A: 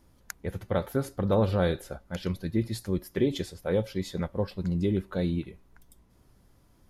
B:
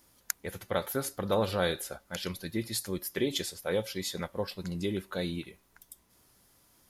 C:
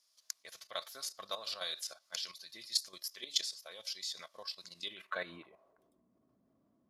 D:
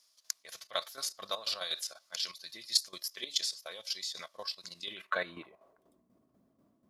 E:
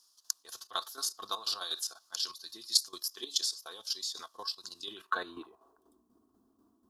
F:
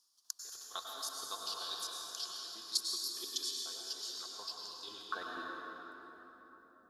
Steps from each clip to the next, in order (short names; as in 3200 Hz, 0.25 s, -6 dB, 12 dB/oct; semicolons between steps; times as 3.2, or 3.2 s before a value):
tilt +3 dB/oct
band-pass sweep 5000 Hz -> 240 Hz, 4.73–6.03; level quantiser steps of 12 dB; small resonant body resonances 650/1100 Hz, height 14 dB, ringing for 45 ms; gain +9 dB
tremolo saw down 4.1 Hz, depth 65%; gain +7 dB
fixed phaser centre 580 Hz, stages 6; gain +4 dB
plate-style reverb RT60 4.1 s, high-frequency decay 0.55×, pre-delay 85 ms, DRR -2 dB; gain -8 dB